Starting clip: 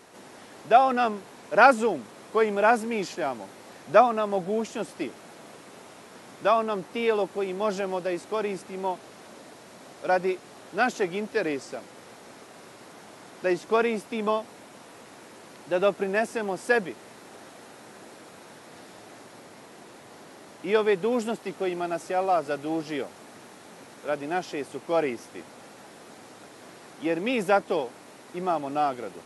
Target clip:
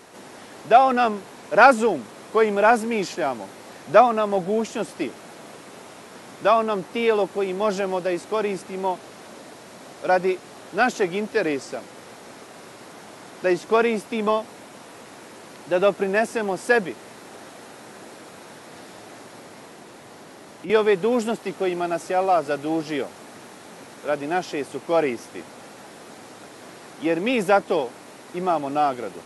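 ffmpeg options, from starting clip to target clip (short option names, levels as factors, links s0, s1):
-filter_complex "[0:a]asettb=1/sr,asplit=3[s0][s1][s2];[s0]atrim=end=19.704[s3];[s1]atrim=start=19.7:end=20.7,asetpts=PTS-STARTPTS,afade=t=in:d=0.004:c=qsin,afade=t=out:st=0.996:d=0.004:c=qsin,acrossover=split=230[s4][s5];[s5]acompressor=threshold=0.00501:ratio=2.5[s6];[s4][s6]amix=inputs=2:normalize=0[s7];[s2]atrim=start=20.696[s8];[s3][s7]acrossfade=d=0.004:c1=hsin:c2=qsin[s9];[s9][s8]acrossfade=d=0.004:c1=qsin:c2=hsin,asplit=2[s10][s11];[s11]asoftclip=type=tanh:threshold=0.119,volume=0.299[s12];[s10][s12]amix=inputs=2:normalize=0,volume=1.33"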